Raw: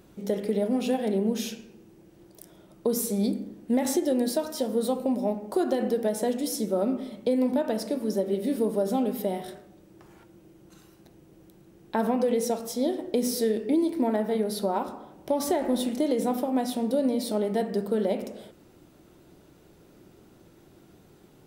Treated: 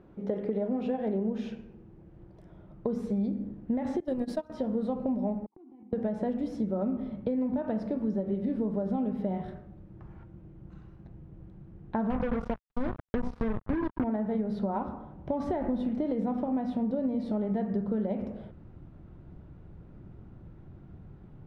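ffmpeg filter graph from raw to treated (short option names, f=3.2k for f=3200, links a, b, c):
-filter_complex "[0:a]asettb=1/sr,asplit=3[a][b][c];[a]atrim=end=4.004[d];[b]atrim=start=4:end=4.5,asetpts=PTS-STARTPTS,afade=t=in:d=0.004:c=qsin,afade=t=out:st=0.496:d=0.004:c=qsin,aemphasis=mode=production:type=75kf,agate=range=-19dB:threshold=-24dB:ratio=16:release=100:detection=peak[e];[c]atrim=start=4.496[f];[d][e]acrossfade=d=0.004:c1=hsin:c2=qsin[g];[g][f]acrossfade=d=0.004:c1=qsin:c2=hsin,asettb=1/sr,asplit=3[h][i][j];[h]atrim=end=5.464[k];[i]atrim=start=5.46:end=5.93,asetpts=PTS-STARTPTS,afade=t=in:d=0.004:c=qsin,afade=t=out:st=0.466:d=0.004:c=qsin,agate=range=-32dB:threshold=-32dB:ratio=16:release=100:detection=peak,asplit=3[l][m][n];[l]bandpass=f=300:t=q:w=8,volume=0dB[o];[m]bandpass=f=870:t=q:w=8,volume=-6dB[p];[n]bandpass=f=2.24k:t=q:w=8,volume=-9dB[q];[o][p][q]amix=inputs=3:normalize=0,acompressor=threshold=-51dB:ratio=4:attack=3.2:release=140:knee=1:detection=peak[r];[j]atrim=start=5.926[s];[k][r]acrossfade=d=0.004:c1=hsin:c2=qsin[t];[t][s]acrossfade=d=0.004:c1=qsin:c2=hsin,asettb=1/sr,asplit=3[u][v][w];[u]atrim=end=12.104[x];[v]atrim=start=12.1:end=14.04,asetpts=PTS-STARTPTS,afade=t=in:d=0.004:c=qsin,afade=t=out:st=1.936:d=0.004:c=qsin,highshelf=f=7.9k:g=-8.5,acrusher=bits=3:mix=0:aa=0.5[y];[w]atrim=start=14.036[z];[x][y]acrossfade=d=0.004:c1=hsin:c2=qsin[aa];[aa][z]acrossfade=d=0.004:c1=qsin:c2=hsin,asubboost=boost=6.5:cutoff=140,lowpass=1.5k,acompressor=threshold=-26dB:ratio=6"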